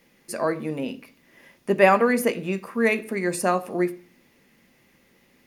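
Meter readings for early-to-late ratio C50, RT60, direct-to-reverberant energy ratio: 18.5 dB, 0.45 s, 8.5 dB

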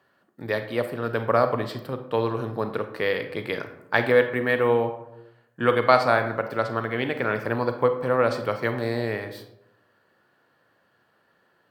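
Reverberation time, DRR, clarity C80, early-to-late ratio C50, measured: 0.85 s, 8.0 dB, 12.5 dB, 10.0 dB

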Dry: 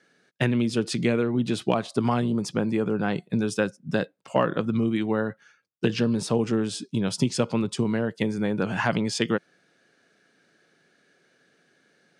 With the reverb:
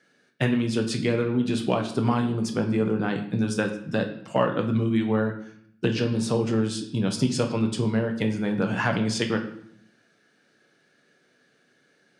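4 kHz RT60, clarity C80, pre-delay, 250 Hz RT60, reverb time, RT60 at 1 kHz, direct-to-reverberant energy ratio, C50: 0.60 s, 12.5 dB, 7 ms, 0.95 s, 0.70 s, 0.65 s, 3.5 dB, 9.5 dB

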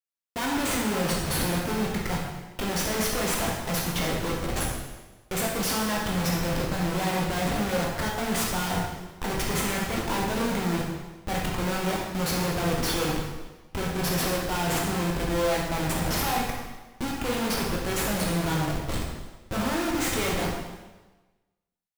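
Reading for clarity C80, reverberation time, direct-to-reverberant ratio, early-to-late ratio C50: 4.0 dB, 1.2 s, −3.0 dB, 1.5 dB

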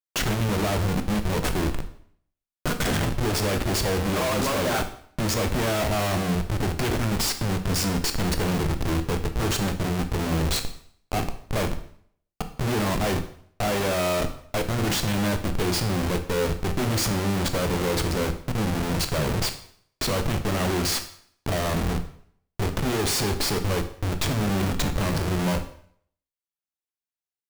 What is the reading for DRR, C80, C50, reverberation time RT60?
7.0 dB, 15.0 dB, 11.5 dB, 0.60 s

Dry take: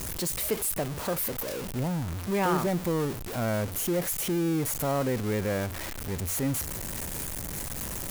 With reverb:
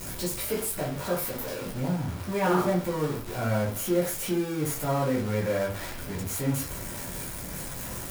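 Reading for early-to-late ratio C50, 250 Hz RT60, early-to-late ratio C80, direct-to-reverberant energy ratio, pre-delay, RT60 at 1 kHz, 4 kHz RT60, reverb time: 7.0 dB, 0.40 s, 12.5 dB, −5.0 dB, 9 ms, 0.45 s, 0.25 s, 0.45 s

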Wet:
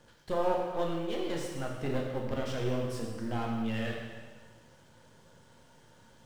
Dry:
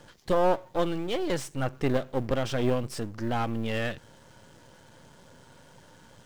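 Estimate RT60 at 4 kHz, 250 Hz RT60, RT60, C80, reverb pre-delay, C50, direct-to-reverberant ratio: 1.4 s, 1.4 s, 1.5 s, 3.5 dB, 5 ms, 1.5 dB, −1.0 dB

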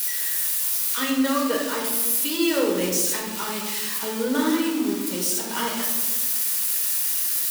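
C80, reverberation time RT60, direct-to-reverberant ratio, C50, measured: 5.0 dB, 1.3 s, −2.5 dB, 2.5 dB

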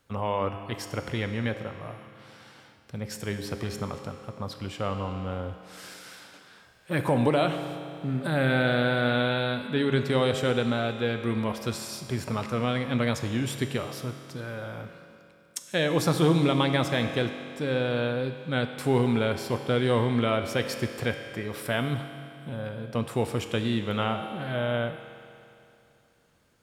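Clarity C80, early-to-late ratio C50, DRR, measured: 8.0 dB, 7.0 dB, 6.0 dB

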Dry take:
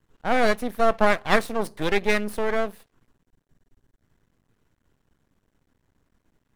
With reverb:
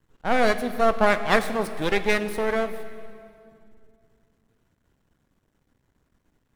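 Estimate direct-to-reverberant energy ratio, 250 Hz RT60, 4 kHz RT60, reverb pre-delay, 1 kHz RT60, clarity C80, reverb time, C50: 10.5 dB, 3.0 s, 2.0 s, 13 ms, 2.2 s, 12.5 dB, 2.4 s, 11.5 dB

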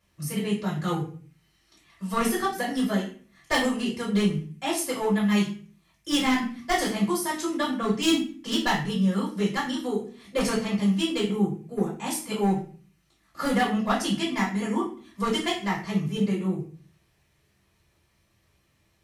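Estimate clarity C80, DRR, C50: 11.5 dB, −6.5 dB, 7.0 dB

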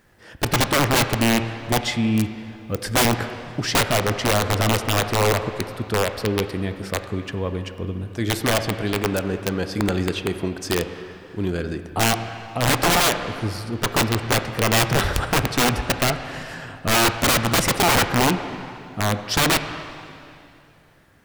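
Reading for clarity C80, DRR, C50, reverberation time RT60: 10.0 dB, 8.0 dB, 9.0 dB, 2.6 s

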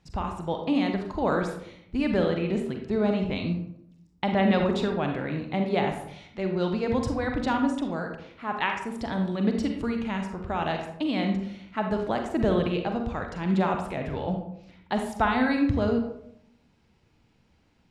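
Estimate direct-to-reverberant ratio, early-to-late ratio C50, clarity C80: 3.0 dB, 5.0 dB, 8.5 dB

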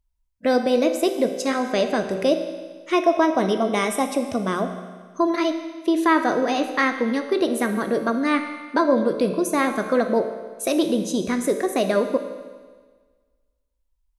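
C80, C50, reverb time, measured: 9.5 dB, 8.0 dB, 1.5 s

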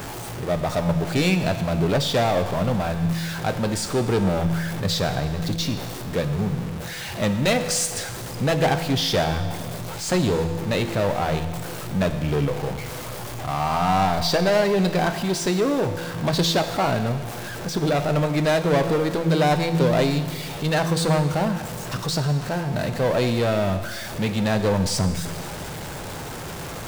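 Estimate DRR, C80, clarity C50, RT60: 7.5 dB, 10.5 dB, 9.5 dB, 1.7 s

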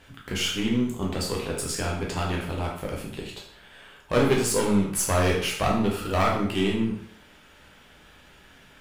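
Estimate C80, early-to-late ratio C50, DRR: 7.5 dB, 4.5 dB, −2.0 dB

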